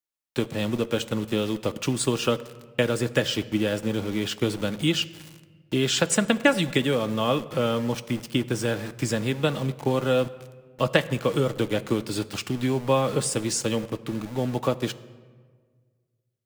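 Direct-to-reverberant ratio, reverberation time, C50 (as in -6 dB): 10.0 dB, 1.6 s, 17.5 dB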